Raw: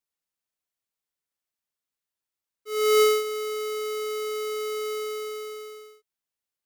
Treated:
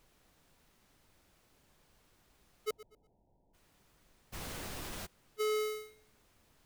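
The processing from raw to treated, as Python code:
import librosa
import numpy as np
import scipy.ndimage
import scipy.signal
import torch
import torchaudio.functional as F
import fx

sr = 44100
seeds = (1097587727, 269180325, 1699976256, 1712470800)

y = fx.gate_flip(x, sr, shuts_db=-33.0, range_db=-41)
y = fx.cheby_harmonics(y, sr, harmonics=(7,), levels_db=(-17,), full_scale_db=-33.0)
y = fx.dmg_noise_colour(y, sr, seeds[0], colour='pink', level_db=-72.0)
y = fx.cheby1_lowpass(y, sr, hz=960.0, order=10, at=(2.7, 3.53), fade=0.02)
y = fx.echo_feedback(y, sr, ms=121, feedback_pct=28, wet_db=-17.5)
y = fx.env_flatten(y, sr, amount_pct=70, at=(4.32, 5.05), fade=0.02)
y = y * 10.0 ** (3.5 / 20.0)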